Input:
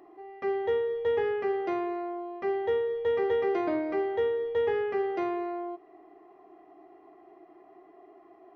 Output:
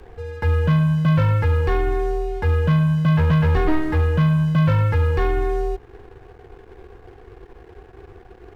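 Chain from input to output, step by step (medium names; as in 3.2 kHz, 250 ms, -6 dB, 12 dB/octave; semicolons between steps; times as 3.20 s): waveshaping leveller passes 2; frequency shift -310 Hz; trim +6.5 dB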